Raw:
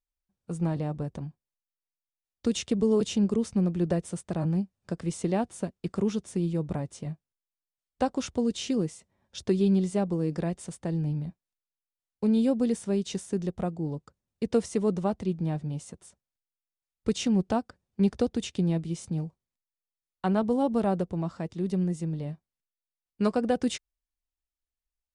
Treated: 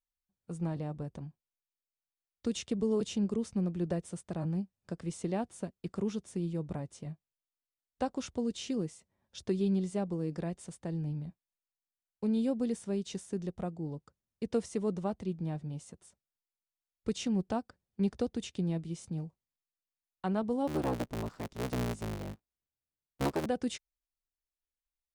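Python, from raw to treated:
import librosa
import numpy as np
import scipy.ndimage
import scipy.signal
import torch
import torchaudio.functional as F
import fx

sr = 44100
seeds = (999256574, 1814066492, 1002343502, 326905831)

y = fx.cycle_switch(x, sr, every=3, mode='inverted', at=(20.67, 23.46))
y = F.gain(torch.from_numpy(y), -6.5).numpy()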